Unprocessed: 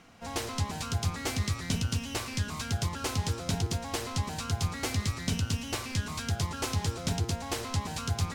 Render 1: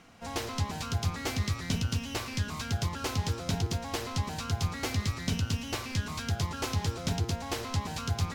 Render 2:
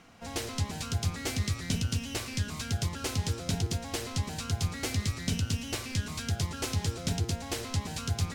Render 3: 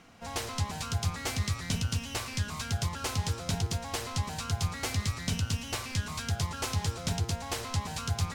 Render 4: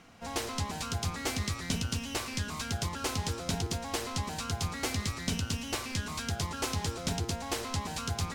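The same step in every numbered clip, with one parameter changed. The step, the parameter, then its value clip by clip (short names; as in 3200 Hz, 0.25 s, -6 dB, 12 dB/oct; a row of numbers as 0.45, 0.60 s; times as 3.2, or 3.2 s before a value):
dynamic EQ, frequency: 8900, 1000, 310, 110 Hz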